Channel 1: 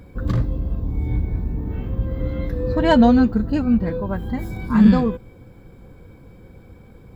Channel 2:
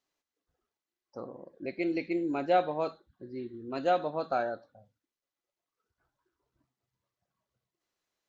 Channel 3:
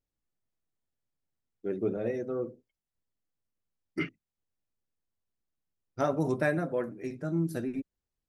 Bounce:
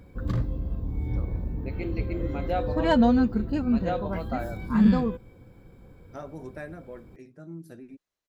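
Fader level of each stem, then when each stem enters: -6.5, -4.0, -11.5 dB; 0.00, 0.00, 0.15 s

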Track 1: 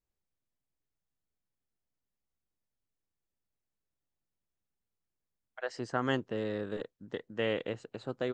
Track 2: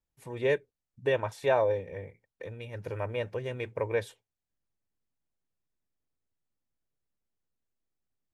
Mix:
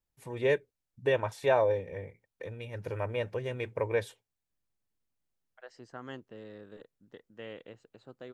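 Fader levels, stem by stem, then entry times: -12.5, 0.0 dB; 0.00, 0.00 s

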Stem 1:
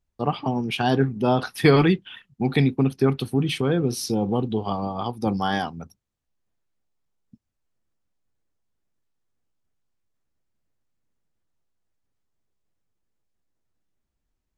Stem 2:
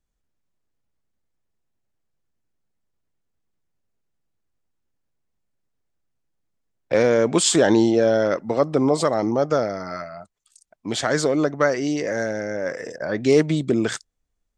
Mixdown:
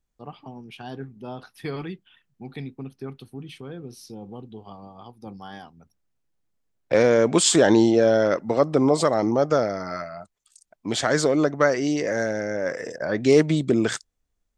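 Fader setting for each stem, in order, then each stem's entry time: -15.5, 0.0 dB; 0.00, 0.00 s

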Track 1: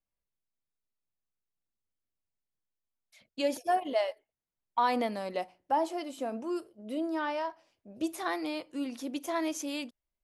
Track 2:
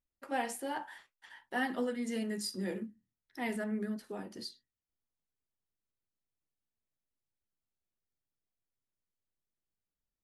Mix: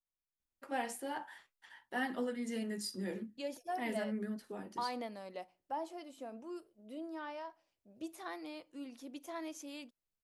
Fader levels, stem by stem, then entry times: -11.5, -3.0 dB; 0.00, 0.40 s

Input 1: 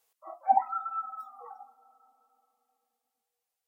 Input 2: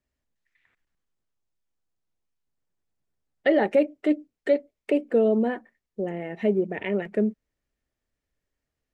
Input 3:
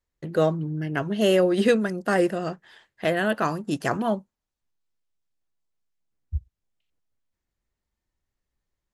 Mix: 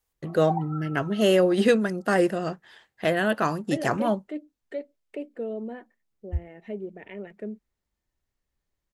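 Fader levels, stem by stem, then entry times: -7.5, -12.0, 0.0 dB; 0.00, 0.25, 0.00 s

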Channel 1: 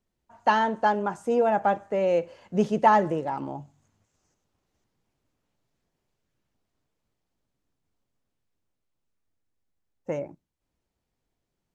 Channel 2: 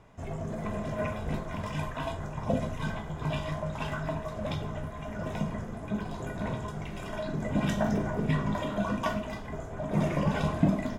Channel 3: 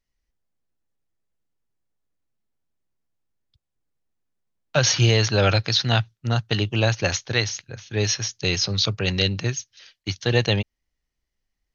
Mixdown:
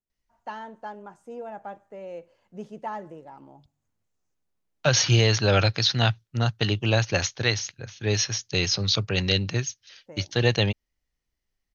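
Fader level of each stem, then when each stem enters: -15.0 dB, off, -1.5 dB; 0.00 s, off, 0.10 s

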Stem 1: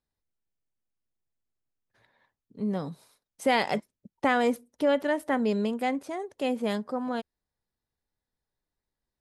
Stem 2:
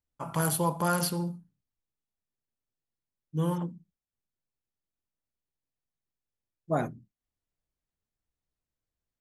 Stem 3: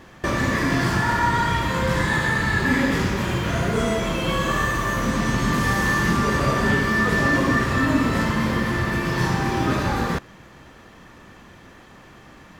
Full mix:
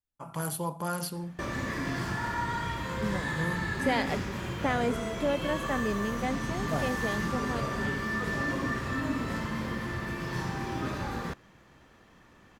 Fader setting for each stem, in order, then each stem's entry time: -5.0, -5.5, -11.5 dB; 0.40, 0.00, 1.15 s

